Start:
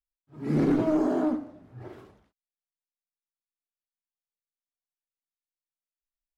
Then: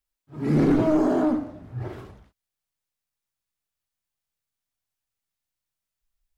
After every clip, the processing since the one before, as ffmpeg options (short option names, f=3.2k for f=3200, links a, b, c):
-filter_complex "[0:a]asubboost=boost=3.5:cutoff=160,asplit=2[a][b];[b]alimiter=level_in=3.5dB:limit=-24dB:level=0:latency=1:release=28,volume=-3.5dB,volume=0dB[c];[a][c]amix=inputs=2:normalize=0,volume=2dB"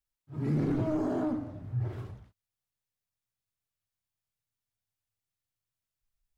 -af "equalizer=f=110:w=1.6:g=12,acompressor=threshold=-26dB:ratio=2,volume=-5dB"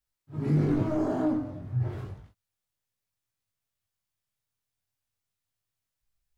-af "flanger=delay=18.5:depth=4.4:speed=0.32,volume=6dB"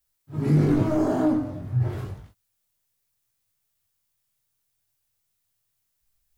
-af "crystalizer=i=1:c=0,volume=5dB"